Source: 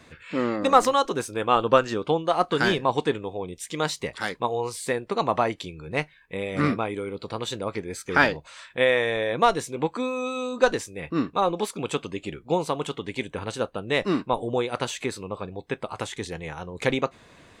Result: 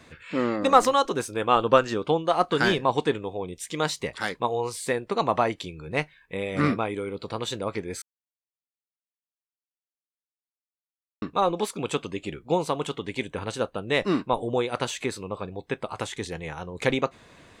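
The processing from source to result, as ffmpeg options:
-filter_complex "[0:a]asplit=3[s0][s1][s2];[s0]atrim=end=8.02,asetpts=PTS-STARTPTS,afade=t=out:st=8.016:d=0.004:c=hsin[s3];[s1]atrim=start=8.02:end=11.22,asetpts=PTS-STARTPTS,volume=0[s4];[s2]atrim=start=11.22,asetpts=PTS-STARTPTS,afade=t=in:d=0.004:c=hsin[s5];[s3][s4][s5]concat=n=3:v=0:a=1"

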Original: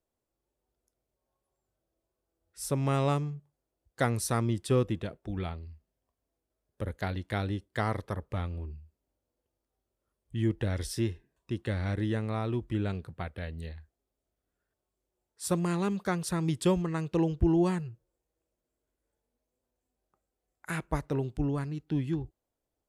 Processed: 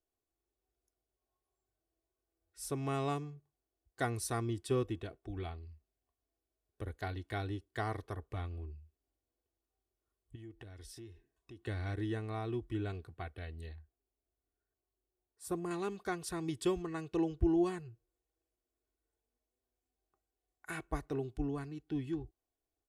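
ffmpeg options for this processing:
-filter_complex "[0:a]asettb=1/sr,asplit=3[s0][s1][s2];[s0]atrim=end=10.354[s3];[s1]atrim=start=10.35:end=11.64,asetpts=PTS-STARTPTS,afade=t=in:d=0.004:c=qsin,afade=t=out:st=1.286:d=0.004:c=qsin,acompressor=threshold=0.00708:ratio=4:attack=3.2:release=140:knee=1:detection=peak[s4];[s2]atrim=start=11.636[s5];[s3][s4]acrossfade=d=0.004:c1=hsin:c2=qsin[s6];[s6][s5]acrossfade=d=0.004:c1=qsin:c2=hsin,asettb=1/sr,asplit=3[s7][s8][s9];[s7]atrim=end=13.754[s10];[s8]atrim=start=13.75:end=15.71,asetpts=PTS-STARTPTS,afade=t=in:d=0.004:c=qsin,afade=t=out:st=1.956:d=0.004:c=qsin,equalizer=f=3900:w=0.43:g=-9.5[s11];[s9]atrim=start=15.706[s12];[s10][s11]acrossfade=d=0.004:c1=hsin:c2=qsin[s13];[s13][s12]acrossfade=d=0.004:c1=qsin:c2=hsin,aecho=1:1:2.7:0.6,volume=0.422"

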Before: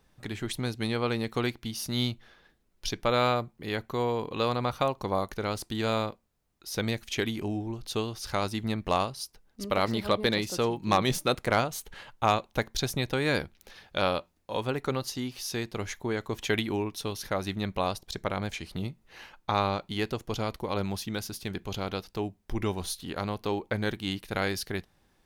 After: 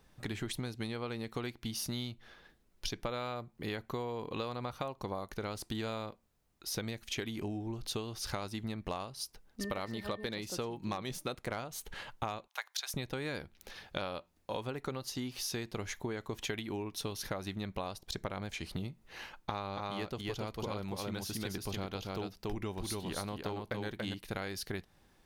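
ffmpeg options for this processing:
-filter_complex "[0:a]asettb=1/sr,asplit=3[s0][s1][s2];[s0]atrim=end=9.614[s3];[s1]atrim=start=9.61:end=10.3,asetpts=PTS-STARTPTS,afade=t=in:d=0.004:c=qsin,afade=t=out:st=0.686:d=0.004:c=qsin,aeval=exprs='val(0)+0.00708*sin(2*PI*1800*n/s)':c=same[s4];[s2]atrim=start=10.296[s5];[s3][s4]acrossfade=d=0.004:c1=hsin:c2=qsin[s6];[s6][s5]acrossfade=d=0.004:c1=qsin:c2=hsin,asettb=1/sr,asplit=3[s7][s8][s9];[s7]atrim=end=12.484[s10];[s8]atrim=start=12.48:end=12.94,asetpts=PTS-STARTPTS,afade=t=in:d=0.004:c=qsin,afade=t=out:st=0.456:d=0.004:c=qsin,highpass=f=890:w=0.5412,highpass=f=890:w=1.3066[s11];[s9]atrim=start=12.936[s12];[s10][s11]acrossfade=d=0.004:c1=hsin:c2=qsin[s13];[s13][s12]acrossfade=d=0.004:c1=qsin:c2=hsin,asettb=1/sr,asplit=3[s14][s15][s16];[s14]atrim=end=19.214[s17];[s15]atrim=start=19.21:end=24.14,asetpts=PTS-STARTPTS,afade=t=in:d=0.004:c=qsin,afade=t=out:st=4.926:d=0.004:c=qsin,aecho=1:1:283:0.668,atrim=end_sample=217413[s18];[s16]atrim=start=24.136[s19];[s17][s18]acrossfade=d=0.004:c1=hsin:c2=qsin[s20];[s20][s19]acrossfade=d=0.004:c1=qsin:c2=hsin,acompressor=threshold=0.0178:ratio=12,volume=1.12"

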